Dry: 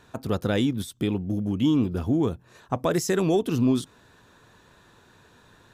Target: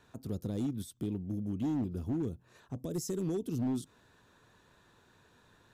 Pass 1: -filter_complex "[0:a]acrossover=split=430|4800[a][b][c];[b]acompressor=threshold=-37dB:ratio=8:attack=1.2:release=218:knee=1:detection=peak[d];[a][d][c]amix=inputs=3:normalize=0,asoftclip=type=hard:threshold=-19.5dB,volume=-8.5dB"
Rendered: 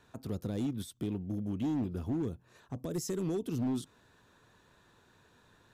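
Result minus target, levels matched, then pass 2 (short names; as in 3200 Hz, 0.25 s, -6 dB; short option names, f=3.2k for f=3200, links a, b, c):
compressor: peak gain reduction -7.5 dB
-filter_complex "[0:a]acrossover=split=430|4800[a][b][c];[b]acompressor=threshold=-45.5dB:ratio=8:attack=1.2:release=218:knee=1:detection=peak[d];[a][d][c]amix=inputs=3:normalize=0,asoftclip=type=hard:threshold=-19.5dB,volume=-8.5dB"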